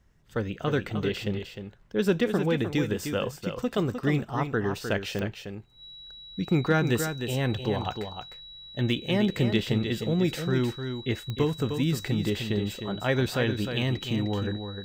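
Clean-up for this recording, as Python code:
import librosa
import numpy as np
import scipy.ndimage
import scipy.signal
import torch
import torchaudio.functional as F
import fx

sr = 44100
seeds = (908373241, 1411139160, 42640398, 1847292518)

y = fx.fix_declip(x, sr, threshold_db=-14.0)
y = fx.fix_declick_ar(y, sr, threshold=10.0)
y = fx.notch(y, sr, hz=3900.0, q=30.0)
y = fx.fix_echo_inverse(y, sr, delay_ms=306, level_db=-7.5)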